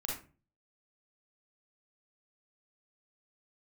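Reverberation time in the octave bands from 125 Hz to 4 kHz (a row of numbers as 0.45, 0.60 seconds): 0.60, 0.50, 0.40, 0.30, 0.30, 0.20 seconds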